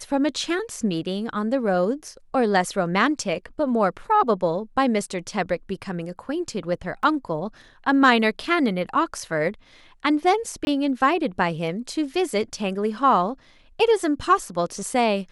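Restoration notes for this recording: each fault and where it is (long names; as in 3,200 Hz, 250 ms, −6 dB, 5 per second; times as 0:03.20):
0:07.03: drop-out 2.5 ms
0:10.65–0:10.67: drop-out 21 ms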